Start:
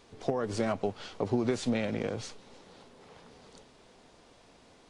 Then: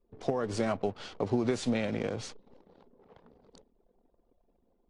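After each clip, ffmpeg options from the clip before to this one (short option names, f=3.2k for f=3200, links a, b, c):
-af "anlmdn=0.00398"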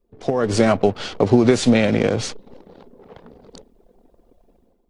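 -af "equalizer=f=980:t=o:w=0.77:g=-2.5,dynaudnorm=f=140:g=5:m=10.5dB,volume=4.5dB"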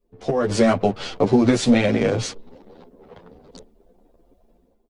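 -filter_complex "[0:a]asplit=2[a][b];[b]adelay=10.1,afreqshift=2.9[c];[a][c]amix=inputs=2:normalize=1,volume=1.5dB"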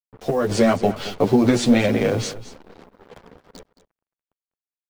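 -af "acrusher=bits=6:mix=0:aa=0.5,aecho=1:1:220:0.168"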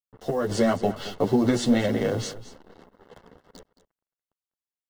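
-af "asuperstop=centerf=2400:order=8:qfactor=7.1,volume=-5dB"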